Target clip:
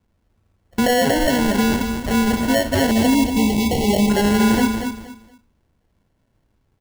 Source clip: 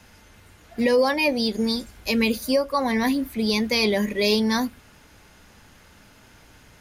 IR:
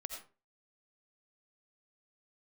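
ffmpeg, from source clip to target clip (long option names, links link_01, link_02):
-filter_complex "[0:a]agate=range=-27dB:threshold=-43dB:ratio=16:detection=peak,lowshelf=frequency=300:gain=11,bandreject=frequency=60:width_type=h:width=6,bandreject=frequency=120:width_type=h:width=6,bandreject=frequency=180:width_type=h:width=6,bandreject=frequency=240:width_type=h:width=6,bandreject=frequency=300:width_type=h:width=6,bandreject=frequency=360:width_type=h:width=6,bandreject=frequency=420:width_type=h:width=6,alimiter=limit=-16.5dB:level=0:latency=1:release=52,acrusher=samples=36:mix=1:aa=0.000001,asettb=1/sr,asplit=3[link_01][link_02][link_03];[link_01]atrim=end=2.914[link_04];[link_02]atrim=start=2.91:end=4.1,asetpts=PTS-STARTPTS,afade=type=in:duration=0.004:curve=qsin,afade=type=out:start_time=1.186:duration=0.004:curve=qsin,asuperstop=centerf=1400:order=12:qfactor=1.3[link_05];[link_03]atrim=start=4.096[link_06];[link_04][link_05]acrossfade=duration=0.004:curve1=hsin:curve2=qsin[link_07];[link_07][link_06]acrossfade=duration=0.004:curve1=qsin:curve2=hsin,aecho=1:1:235|470|705:0.447|0.107|0.0257,volume=6dB"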